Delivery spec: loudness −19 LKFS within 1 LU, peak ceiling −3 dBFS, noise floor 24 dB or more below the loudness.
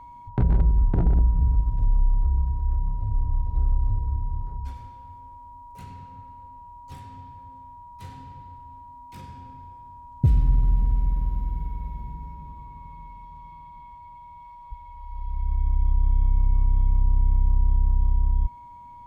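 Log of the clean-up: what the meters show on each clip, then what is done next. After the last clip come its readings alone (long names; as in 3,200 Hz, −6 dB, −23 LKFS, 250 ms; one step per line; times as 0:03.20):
interfering tone 960 Hz; level of the tone −42 dBFS; integrated loudness −25.5 LKFS; sample peak −11.0 dBFS; target loudness −19.0 LKFS
→ notch filter 960 Hz, Q 30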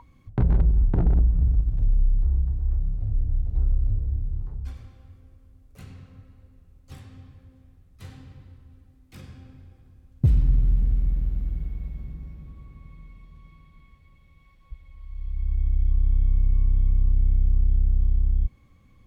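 interfering tone none found; integrated loudness −25.5 LKFS; sample peak −11.0 dBFS; target loudness −19.0 LKFS
→ level +6.5 dB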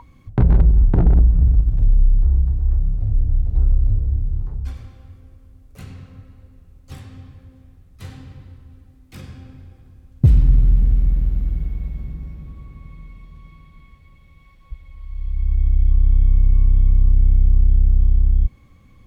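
integrated loudness −19.0 LKFS; sample peak −4.5 dBFS; background noise floor −50 dBFS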